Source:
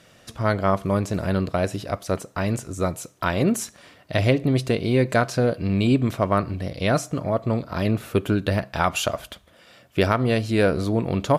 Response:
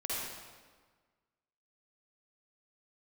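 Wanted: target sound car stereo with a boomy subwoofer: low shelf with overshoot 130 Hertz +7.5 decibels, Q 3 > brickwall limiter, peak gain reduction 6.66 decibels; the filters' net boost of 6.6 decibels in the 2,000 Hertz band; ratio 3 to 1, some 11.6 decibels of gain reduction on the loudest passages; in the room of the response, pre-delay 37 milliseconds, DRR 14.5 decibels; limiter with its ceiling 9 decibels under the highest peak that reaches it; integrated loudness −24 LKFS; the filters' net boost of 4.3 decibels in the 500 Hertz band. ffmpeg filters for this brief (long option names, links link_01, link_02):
-filter_complex "[0:a]equalizer=frequency=500:width_type=o:gain=5.5,equalizer=frequency=2000:width_type=o:gain=8.5,acompressor=threshold=-27dB:ratio=3,alimiter=limit=-19.5dB:level=0:latency=1,asplit=2[link_01][link_02];[1:a]atrim=start_sample=2205,adelay=37[link_03];[link_02][link_03]afir=irnorm=-1:irlink=0,volume=-19dB[link_04];[link_01][link_04]amix=inputs=2:normalize=0,lowshelf=frequency=130:width_type=q:width=3:gain=7.5,volume=5.5dB,alimiter=limit=-13.5dB:level=0:latency=1"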